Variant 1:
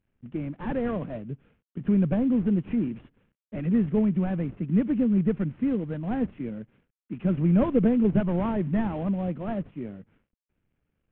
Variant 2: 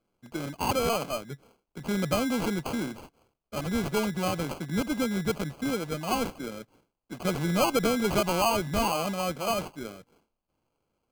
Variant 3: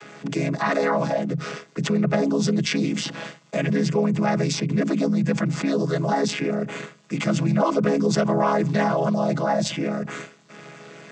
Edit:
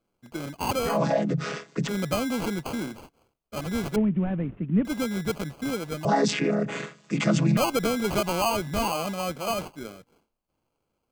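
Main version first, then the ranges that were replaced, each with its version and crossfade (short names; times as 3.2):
2
0.92–1.87 from 3, crossfade 0.16 s
3.96–4.85 from 1
6.05–7.57 from 3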